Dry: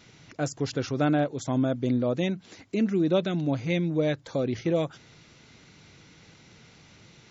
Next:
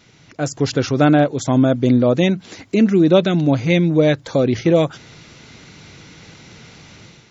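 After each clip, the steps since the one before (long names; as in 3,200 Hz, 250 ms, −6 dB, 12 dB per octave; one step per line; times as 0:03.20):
automatic gain control gain up to 9 dB
level +2.5 dB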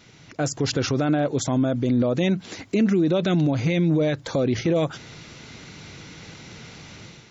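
brickwall limiter −13 dBFS, peak gain reduction 11.5 dB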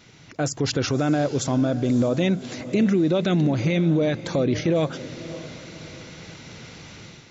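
feedback delay with all-pass diffusion 574 ms, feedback 40%, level −14.5 dB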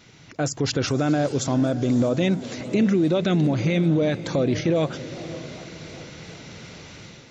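feedback echo with a swinging delay time 404 ms, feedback 71%, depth 190 cents, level −21 dB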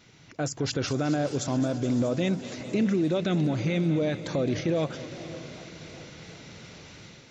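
feedback echo with a high-pass in the loop 213 ms, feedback 81%, high-pass 800 Hz, level −13.5 dB
level −5 dB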